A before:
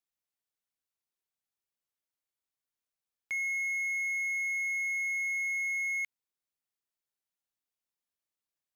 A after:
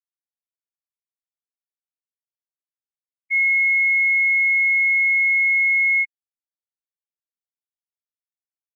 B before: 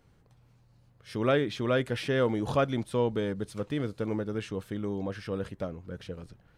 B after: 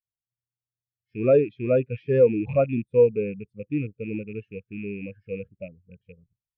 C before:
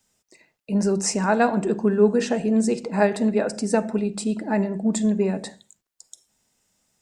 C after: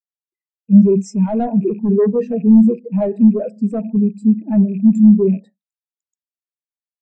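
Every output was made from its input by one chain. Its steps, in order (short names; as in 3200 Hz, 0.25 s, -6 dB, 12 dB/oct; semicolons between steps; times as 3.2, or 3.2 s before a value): rattling part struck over -34 dBFS, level -19 dBFS; in parallel at -6.5 dB: sine folder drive 14 dB, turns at -4.5 dBFS; on the sum: spectral expander 2.5:1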